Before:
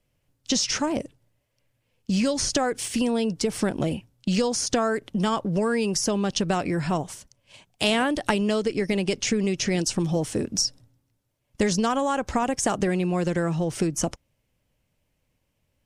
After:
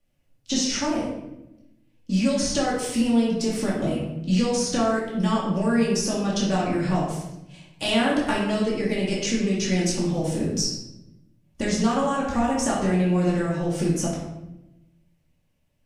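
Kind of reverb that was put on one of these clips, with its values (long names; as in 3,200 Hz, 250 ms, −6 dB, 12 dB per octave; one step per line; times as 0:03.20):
rectangular room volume 320 cubic metres, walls mixed, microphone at 2.4 metres
level −7 dB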